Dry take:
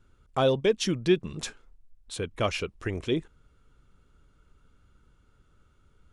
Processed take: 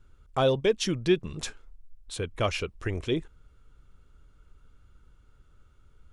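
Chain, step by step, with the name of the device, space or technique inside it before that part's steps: low shelf boost with a cut just above (bass shelf 79 Hz +7 dB; peaking EQ 210 Hz -3 dB 1.1 oct)

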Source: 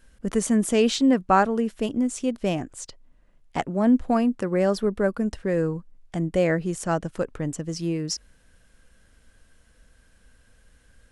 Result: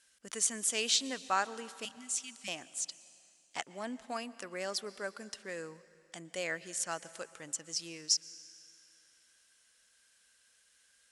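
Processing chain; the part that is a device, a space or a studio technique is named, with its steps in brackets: 1.85–2.48 s: elliptic band-stop 220–1900 Hz; piezo pickup straight into a mixer (low-pass 7.3 kHz 12 dB/octave; differentiator); plate-style reverb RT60 2.5 s, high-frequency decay 0.95×, pre-delay 105 ms, DRR 17.5 dB; trim +5 dB

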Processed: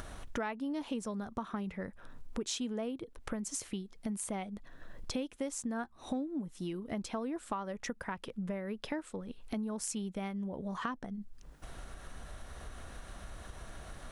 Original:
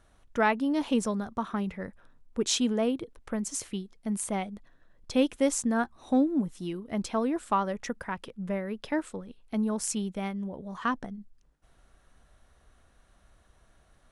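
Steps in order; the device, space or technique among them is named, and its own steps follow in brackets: upward and downward compression (upward compressor, threshold -42 dBFS; compression 5:1, threshold -43 dBFS, peak gain reduction 21.5 dB); trim +6.5 dB

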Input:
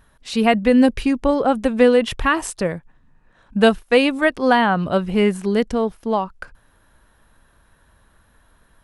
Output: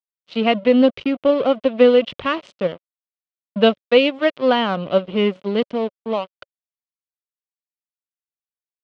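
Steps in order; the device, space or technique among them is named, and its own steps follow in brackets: blown loudspeaker (crossover distortion -28 dBFS; cabinet simulation 140–4200 Hz, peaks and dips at 560 Hz +7 dB, 840 Hz -7 dB, 1.7 kHz -8 dB, 3.1 kHz +6 dB)

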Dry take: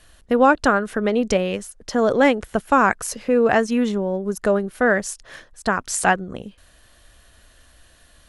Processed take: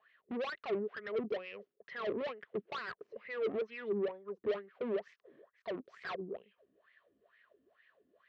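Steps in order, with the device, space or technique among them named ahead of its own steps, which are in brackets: wah-wah guitar rig (wah-wah 2.2 Hz 270–2100 Hz, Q 9.6; valve stage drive 38 dB, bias 0.25; cabinet simulation 110–3800 Hz, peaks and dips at 200 Hz +3 dB, 290 Hz -9 dB, 410 Hz +9 dB, 840 Hz -9 dB, 1.5 kHz -6 dB); trim +3.5 dB

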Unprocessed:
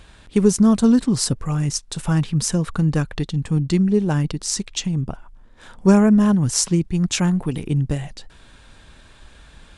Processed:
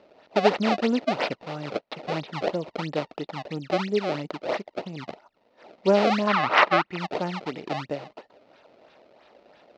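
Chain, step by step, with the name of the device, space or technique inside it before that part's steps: circuit-bent sampling toy (decimation with a swept rate 27×, swing 160% 3 Hz; cabinet simulation 430–4100 Hz, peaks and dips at 610 Hz +6 dB, 1.1 kHz -6 dB, 1.6 kHz -9 dB, 2.3 kHz -3 dB, 3.3 kHz -6 dB); 6.27–6.99 s: FFT filter 640 Hz 0 dB, 1.2 kHz +14 dB, 7.1 kHz -3 dB

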